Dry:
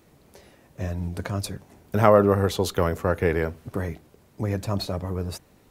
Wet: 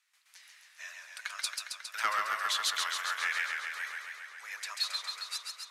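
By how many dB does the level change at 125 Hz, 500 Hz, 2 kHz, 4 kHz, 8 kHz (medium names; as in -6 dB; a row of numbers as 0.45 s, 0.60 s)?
under -40 dB, -31.0 dB, +2.0 dB, +4.5 dB, +2.0 dB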